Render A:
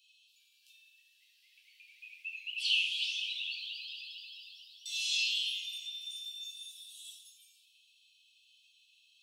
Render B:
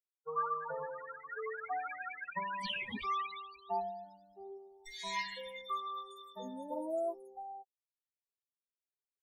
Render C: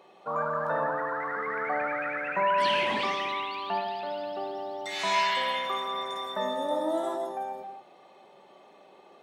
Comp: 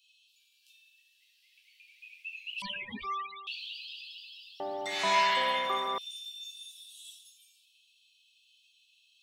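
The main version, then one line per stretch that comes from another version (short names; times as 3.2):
A
2.62–3.47 from B
4.6–5.98 from C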